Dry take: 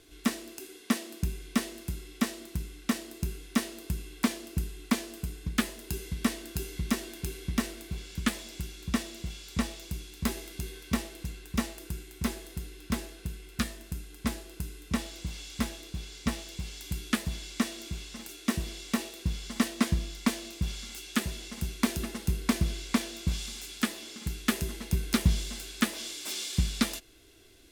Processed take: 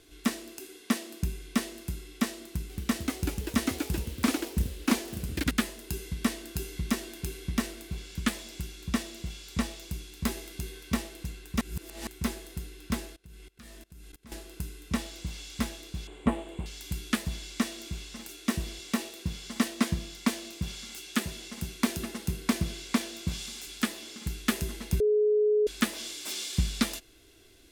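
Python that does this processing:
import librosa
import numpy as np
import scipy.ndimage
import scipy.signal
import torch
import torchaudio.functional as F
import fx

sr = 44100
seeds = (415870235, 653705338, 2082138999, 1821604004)

y = fx.echo_pitch(x, sr, ms=235, semitones=2, count=3, db_per_echo=-3.0, at=(2.46, 5.62))
y = fx.level_steps(y, sr, step_db=24, at=(13.12, 14.32))
y = fx.curve_eq(y, sr, hz=(150.0, 290.0, 930.0, 1500.0, 3200.0, 5500.0, 8300.0, 13000.0), db=(0, 8, 9, -1, -4, -26, -5, -15), at=(16.07, 16.66))
y = fx.highpass(y, sr, hz=77.0, slope=12, at=(18.79, 23.67))
y = fx.edit(y, sr, fx.reverse_span(start_s=11.61, length_s=0.46),
    fx.bleep(start_s=25.0, length_s=0.67, hz=422.0, db=-20.5), tone=tone)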